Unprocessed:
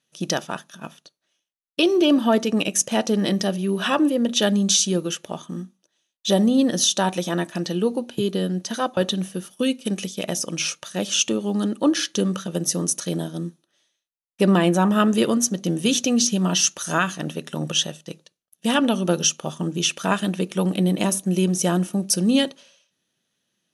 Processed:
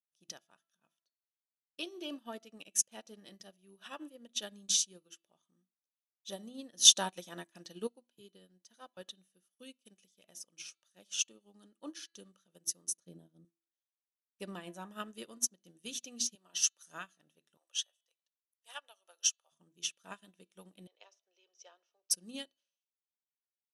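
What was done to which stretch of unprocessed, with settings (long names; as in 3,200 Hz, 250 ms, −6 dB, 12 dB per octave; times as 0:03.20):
0:06.85–0:07.87: clip gain +5.5 dB
0:12.97–0:13.45: tilt shelving filter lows +8.5 dB, about 670 Hz
0:16.35–0:16.83: high-pass filter 330 Hz
0:17.57–0:19.52: high-pass filter 610 Hz 24 dB per octave
0:20.87–0:22.11: Chebyshev band-pass filter 440–5,700 Hz, order 4
whole clip: spectral tilt +2 dB per octave; hum removal 334.4 Hz, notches 14; expander for the loud parts 2.5 to 1, over −30 dBFS; level −7 dB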